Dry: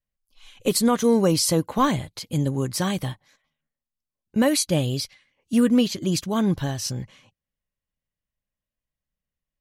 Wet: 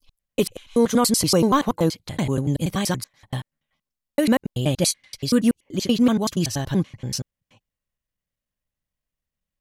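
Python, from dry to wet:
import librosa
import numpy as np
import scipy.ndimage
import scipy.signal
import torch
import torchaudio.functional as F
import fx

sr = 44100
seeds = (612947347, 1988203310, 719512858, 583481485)

y = fx.block_reorder(x, sr, ms=95.0, group=4)
y = F.gain(torch.from_numpy(y), 1.5).numpy()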